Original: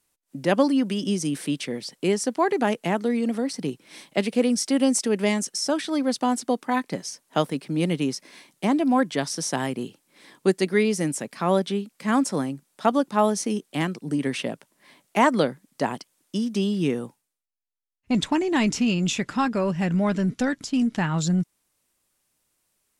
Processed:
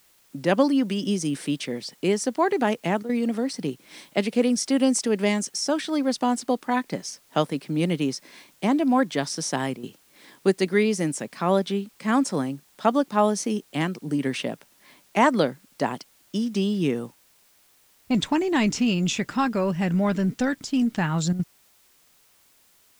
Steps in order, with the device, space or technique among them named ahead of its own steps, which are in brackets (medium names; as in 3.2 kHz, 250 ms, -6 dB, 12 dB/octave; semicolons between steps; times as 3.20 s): worn cassette (low-pass 9.7 kHz; wow and flutter 23 cents; level dips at 3.03/9.77/21.33 s, 62 ms -10 dB; white noise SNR 35 dB)